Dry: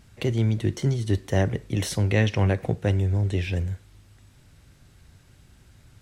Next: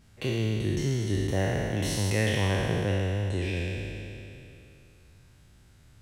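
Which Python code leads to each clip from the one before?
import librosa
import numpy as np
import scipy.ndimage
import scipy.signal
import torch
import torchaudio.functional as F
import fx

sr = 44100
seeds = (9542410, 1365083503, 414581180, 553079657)

y = fx.spec_trails(x, sr, decay_s=2.88)
y = F.gain(torch.from_numpy(y), -7.0).numpy()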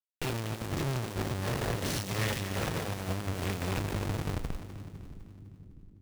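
y = fx.schmitt(x, sr, flips_db=-40.5)
y = fx.cheby_harmonics(y, sr, harmonics=(8,), levels_db=(-6,), full_scale_db=-23.5)
y = fx.echo_split(y, sr, split_hz=310.0, low_ms=663, high_ms=253, feedback_pct=52, wet_db=-11.0)
y = F.gain(torch.from_numpy(y), -3.5).numpy()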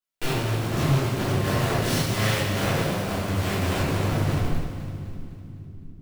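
y = fx.low_shelf(x, sr, hz=170.0, db=-6.0)
y = fx.room_shoebox(y, sr, seeds[0], volume_m3=280.0, walls='mixed', distance_m=3.0)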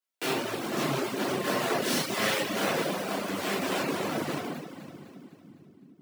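y = fx.dereverb_blind(x, sr, rt60_s=0.67)
y = scipy.signal.sosfilt(scipy.signal.butter(4, 210.0, 'highpass', fs=sr, output='sos'), y)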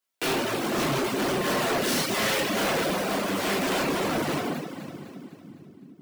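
y = np.clip(10.0 ** (28.5 / 20.0) * x, -1.0, 1.0) / 10.0 ** (28.5 / 20.0)
y = F.gain(torch.from_numpy(y), 6.0).numpy()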